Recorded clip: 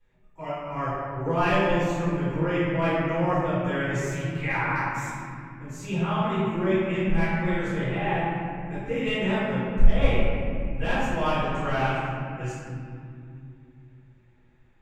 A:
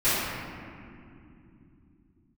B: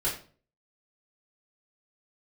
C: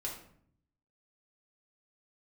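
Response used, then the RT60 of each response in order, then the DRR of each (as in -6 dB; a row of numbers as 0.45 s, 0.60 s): A; 2.8 s, 0.40 s, 0.60 s; -15.5 dB, -7.5 dB, -3.0 dB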